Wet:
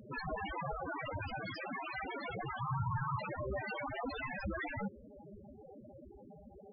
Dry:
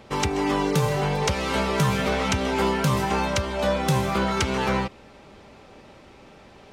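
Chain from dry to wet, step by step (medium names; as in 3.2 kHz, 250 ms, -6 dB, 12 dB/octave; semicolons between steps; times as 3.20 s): integer overflow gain 23.5 dB; 2.60–3.20 s: graphic EQ 125/250/500/1000/4000 Hz +12/-6/-7/+7/-5 dB; loudest bins only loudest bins 4; trim +2 dB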